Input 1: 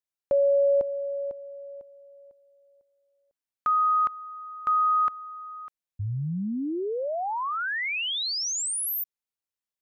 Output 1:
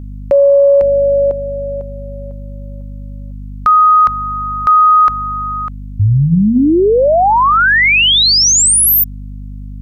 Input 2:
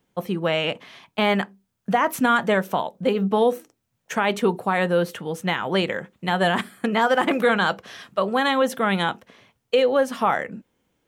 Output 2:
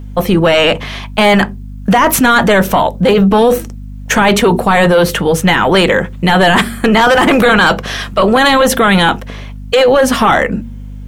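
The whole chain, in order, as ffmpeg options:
-af "aeval=exprs='val(0)+0.00562*(sin(2*PI*50*n/s)+sin(2*PI*2*50*n/s)/2+sin(2*PI*3*50*n/s)/3+sin(2*PI*4*50*n/s)/4+sin(2*PI*5*50*n/s)/5)':c=same,bandreject=f=76.89:t=h:w=4,bandreject=f=153.78:t=h:w=4,bandreject=f=230.67:t=h:w=4,apsyclip=15.8,volume=0.596"

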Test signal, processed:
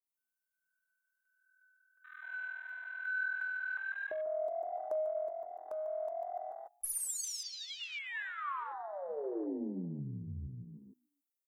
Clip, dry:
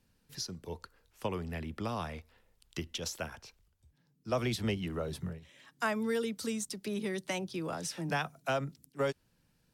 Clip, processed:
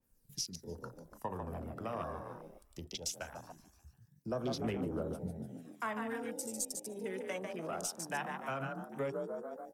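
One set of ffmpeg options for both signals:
-filter_complex "[0:a]acrossover=split=5300[s0][s1];[s0]bandreject=f=51.35:t=h:w=4,bandreject=f=102.7:t=h:w=4,bandreject=f=154.05:t=h:w=4,bandreject=f=205.4:t=h:w=4,bandreject=f=256.75:t=h:w=4,bandreject=f=308.1:t=h:w=4,bandreject=f=359.45:t=h:w=4,bandreject=f=410.8:t=h:w=4,bandreject=f=462.15:t=h:w=4,bandreject=f=513.5:t=h:w=4,bandreject=f=564.85:t=h:w=4,bandreject=f=616.2:t=h:w=4,bandreject=f=667.55:t=h:w=4,bandreject=f=718.9:t=h:w=4,bandreject=f=770.25:t=h:w=4,bandreject=f=821.6:t=h:w=4,bandreject=f=872.95:t=h:w=4,bandreject=f=924.3:t=h:w=4,bandreject=f=975.65:t=h:w=4,bandreject=f=1027:t=h:w=4,bandreject=f=1078.35:t=h:w=4,bandreject=f=1129.7:t=h:w=4,bandreject=f=1181.05:t=h:w=4,bandreject=f=1232.4:t=h:w=4,bandreject=f=1283.75:t=h:w=4,bandreject=f=1335.1:t=h:w=4,bandreject=f=1386.45:t=h:w=4,bandreject=f=1437.8:t=h:w=4,bandreject=f=1489.15:t=h:w=4,bandreject=f=1540.5:t=h:w=4,bandreject=f=1591.85:t=h:w=4,bandreject=f=1643.2:t=h:w=4,bandreject=f=1694.55:t=h:w=4,bandreject=f=1745.9:t=h:w=4,bandreject=f=1797.25:t=h:w=4,bandreject=f=1848.6:t=h:w=4[s2];[s1]crystalizer=i=10:c=0[s3];[s2][s3]amix=inputs=2:normalize=0,asplit=6[s4][s5][s6][s7][s8][s9];[s5]adelay=146,afreqshift=41,volume=0.531[s10];[s6]adelay=292,afreqshift=82,volume=0.24[s11];[s7]adelay=438,afreqshift=123,volume=0.107[s12];[s8]adelay=584,afreqshift=164,volume=0.0484[s13];[s9]adelay=730,afreqshift=205,volume=0.0219[s14];[s4][s10][s11][s12][s13][s14]amix=inputs=6:normalize=0,asplit=2[s15][s16];[s16]adynamicsmooth=sensitivity=6:basefreq=2900,volume=0.891[s17];[s15][s17]amix=inputs=2:normalize=0,flanger=delay=3.1:depth=2.5:regen=-85:speed=0.62:shape=triangular,acompressor=threshold=0.00282:ratio=2,bandreject=f=4300:w=29,aeval=exprs='0.0596*(cos(1*acos(clip(val(0)/0.0596,-1,1)))-cos(1*PI/2))+0.00119*(cos(4*acos(clip(val(0)/0.0596,-1,1)))-cos(4*PI/2))':c=same,bass=f=250:g=-5,treble=f=4000:g=-6,aphaser=in_gain=1:out_gain=1:delay=2:decay=0.4:speed=0.21:type=triangular,afwtdn=0.00251,adynamicequalizer=threshold=0.00178:dfrequency=2300:dqfactor=0.7:tfrequency=2300:tqfactor=0.7:attack=5:release=100:ratio=0.375:range=1.5:mode=cutabove:tftype=highshelf,volume=2.24"

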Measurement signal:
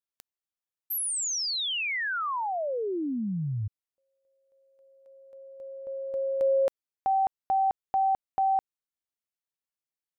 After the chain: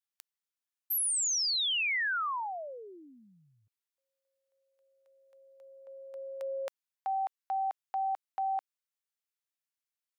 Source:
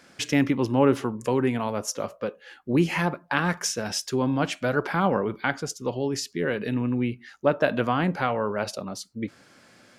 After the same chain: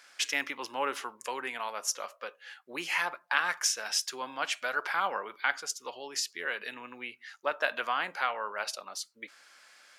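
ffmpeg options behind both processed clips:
-af "highpass=1100"

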